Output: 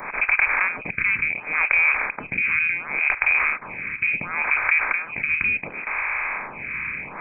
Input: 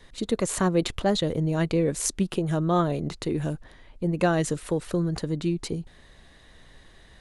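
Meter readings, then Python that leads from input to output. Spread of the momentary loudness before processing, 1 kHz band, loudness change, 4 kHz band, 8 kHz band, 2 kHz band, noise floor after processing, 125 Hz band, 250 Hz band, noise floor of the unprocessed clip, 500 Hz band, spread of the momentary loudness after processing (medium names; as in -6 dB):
7 LU, +3.0 dB, +5.5 dB, under -10 dB, under -40 dB, +21.0 dB, -38 dBFS, -17.0 dB, -17.0 dB, -53 dBFS, -14.0 dB, 10 LU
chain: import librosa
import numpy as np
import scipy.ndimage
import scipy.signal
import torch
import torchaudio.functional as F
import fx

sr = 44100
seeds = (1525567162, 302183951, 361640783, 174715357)

p1 = fx.bin_compress(x, sr, power=0.4)
p2 = scipy.signal.sosfilt(scipy.signal.butter(4, 280.0, 'highpass', fs=sr, output='sos'), p1)
p3 = fx.over_compress(p2, sr, threshold_db=-25.0, ratio=-1.0)
p4 = p2 + F.gain(torch.from_numpy(p3), 1.0).numpy()
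p5 = 10.0 ** (-2.0 / 20.0) * np.tanh(p4 / 10.0 ** (-2.0 / 20.0))
p6 = fx.freq_invert(p5, sr, carrier_hz=2800)
y = fx.stagger_phaser(p6, sr, hz=0.7)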